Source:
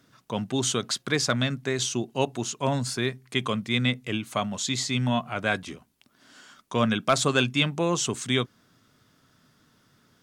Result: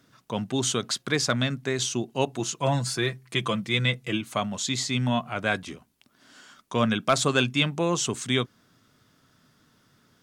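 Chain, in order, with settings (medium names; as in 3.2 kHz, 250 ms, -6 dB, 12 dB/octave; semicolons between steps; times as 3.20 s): 2.39–4.21 s: comb 6 ms, depth 63%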